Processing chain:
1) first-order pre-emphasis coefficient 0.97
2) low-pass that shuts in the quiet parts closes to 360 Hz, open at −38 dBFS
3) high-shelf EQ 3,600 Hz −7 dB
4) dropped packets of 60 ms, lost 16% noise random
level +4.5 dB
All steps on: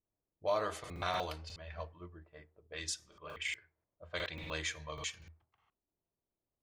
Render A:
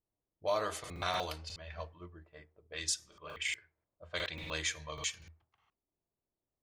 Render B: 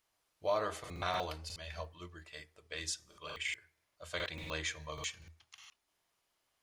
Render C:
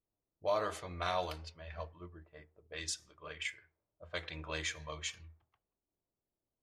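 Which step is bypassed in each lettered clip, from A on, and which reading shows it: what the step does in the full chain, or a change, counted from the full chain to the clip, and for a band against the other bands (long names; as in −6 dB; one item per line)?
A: 3, 8 kHz band +5.0 dB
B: 2, change in momentary loudness spread +2 LU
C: 4, change in momentary loudness spread +2 LU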